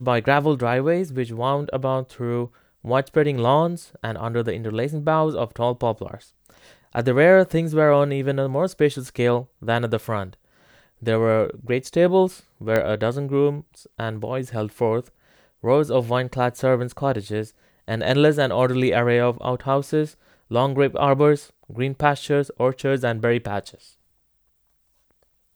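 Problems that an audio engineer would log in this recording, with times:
12.76 pop -9 dBFS

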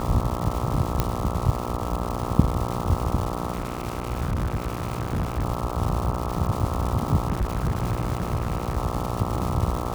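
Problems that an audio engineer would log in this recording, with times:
buzz 60 Hz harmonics 22 -30 dBFS
crackle 480/s -28 dBFS
1 pop -7 dBFS
3.53–5.45 clipped -21.5 dBFS
7.27–8.78 clipped -19.5 dBFS

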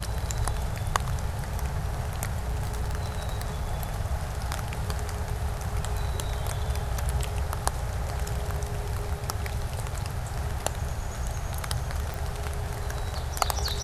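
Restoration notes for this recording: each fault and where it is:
2.42–3.68 clipped -24.5 dBFS
12.14 pop

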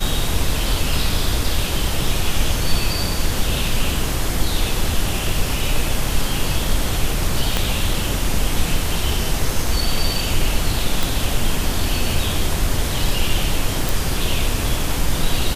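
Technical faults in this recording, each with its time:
7.57 pop -3 dBFS
11.03 pop
13.89 pop

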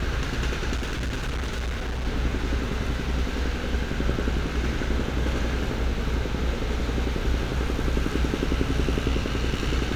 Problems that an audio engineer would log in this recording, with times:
0.75–2.06 clipped -25 dBFS

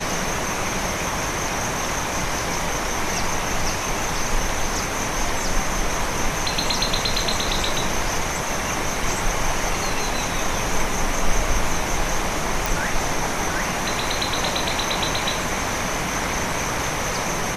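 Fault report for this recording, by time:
12.66 pop

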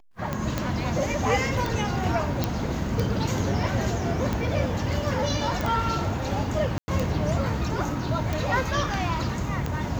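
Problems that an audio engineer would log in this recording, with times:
tick 45 rpm -14 dBFS
0.58 pop -12 dBFS
2.44 pop -9 dBFS
5.61 pop
6.78–6.88 gap 0.1 s

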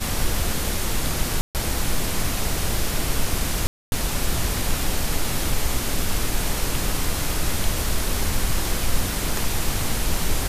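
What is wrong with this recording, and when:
1.41–1.55 gap 0.138 s
3.67–3.92 gap 0.251 s

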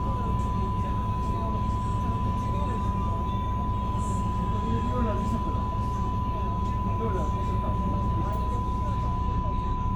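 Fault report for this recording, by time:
tone 1000 Hz -31 dBFS

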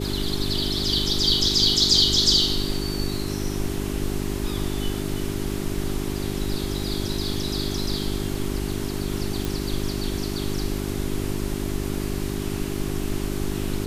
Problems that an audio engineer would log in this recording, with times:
hum 50 Hz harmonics 8 -29 dBFS
9.45 pop

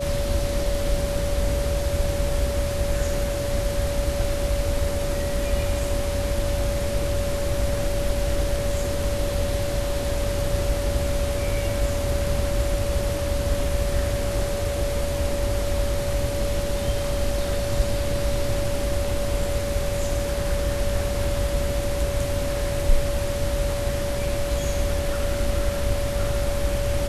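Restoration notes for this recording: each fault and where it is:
tone 570 Hz -27 dBFS

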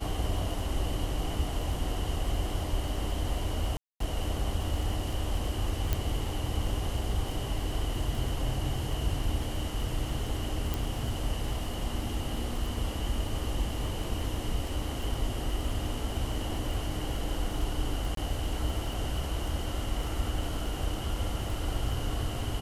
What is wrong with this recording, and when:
crackle 15/s -34 dBFS
3.77–4 gap 0.233 s
5.93 pop -13 dBFS
10.74 pop
18.15–18.17 gap 23 ms

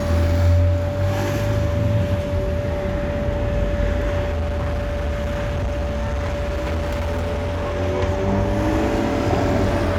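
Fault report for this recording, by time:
tone 580 Hz -25 dBFS
4.3–7.76 clipped -19.5 dBFS

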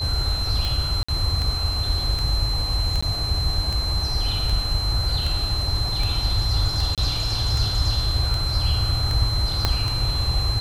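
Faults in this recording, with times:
tick 78 rpm
tone 4100 Hz -26 dBFS
1.03–1.08 gap 55 ms
3.01–3.02 gap 15 ms
6.95–6.98 gap 27 ms
9.65 pop -5 dBFS

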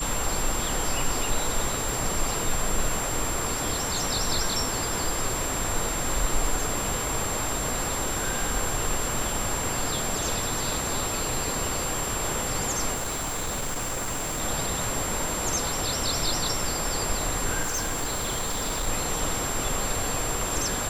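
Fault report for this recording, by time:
tone 7400 Hz -31 dBFS
1.89 pop
12.94–14.42 clipped -26 dBFS
17.62–18.88 clipped -24 dBFS

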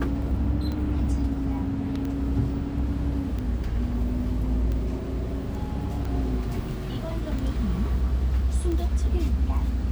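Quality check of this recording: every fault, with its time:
tick 45 rpm -21 dBFS

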